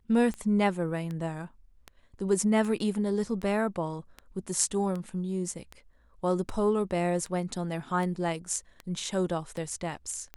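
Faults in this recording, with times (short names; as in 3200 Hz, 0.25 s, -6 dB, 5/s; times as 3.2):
tick 78 rpm -24 dBFS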